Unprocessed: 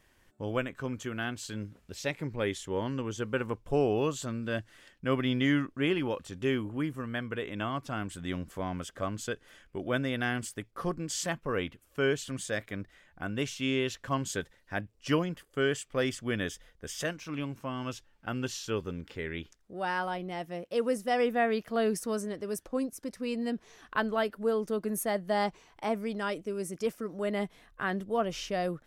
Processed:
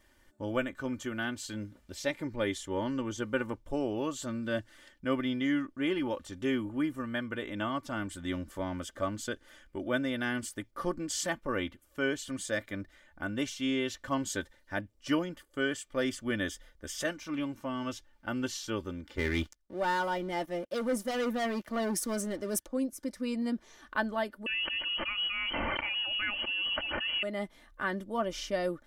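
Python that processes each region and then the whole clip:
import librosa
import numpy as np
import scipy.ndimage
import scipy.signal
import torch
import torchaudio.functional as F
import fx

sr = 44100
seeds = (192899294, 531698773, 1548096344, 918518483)

y = fx.chain(x, sr, fx.leveller(passes=3),
    fx.band_widen(depth_pct=40), at=(19.17, 22.66))
y = fx.chain(y, sr, fx.crossing_spikes(level_db=-35.0),
    fx.freq_invert(carrier_hz=3100),
    fx.env_flatten(amount_pct=100), at=(24.46, 27.23))
y = fx.notch(y, sr, hz=2600.0, q=13.0)
y = fx.rider(y, sr, range_db=4, speed_s=0.5)
y = y + 0.57 * np.pad(y, (int(3.4 * sr / 1000.0), 0))[:len(y)]
y = y * librosa.db_to_amplitude(-5.0)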